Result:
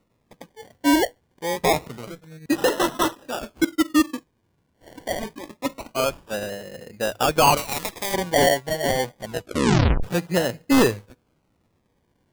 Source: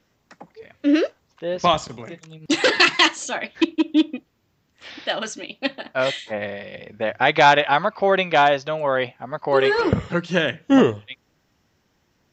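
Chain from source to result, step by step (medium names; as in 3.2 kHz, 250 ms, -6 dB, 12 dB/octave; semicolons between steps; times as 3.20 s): Bessel low-pass 1.3 kHz, order 4; decimation with a swept rate 27×, swing 60% 0.26 Hz; wavefolder -10.5 dBFS; 9.18 s: tape stop 0.85 s; feedback comb 490 Hz, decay 0.16 s, harmonics all, mix 40%; 7.57–8.14 s: spectrum-flattening compressor 2:1; trim +4 dB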